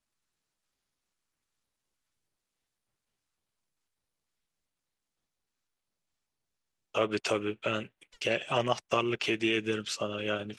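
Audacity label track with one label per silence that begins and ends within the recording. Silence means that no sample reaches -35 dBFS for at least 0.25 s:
7.850000	8.220000	silence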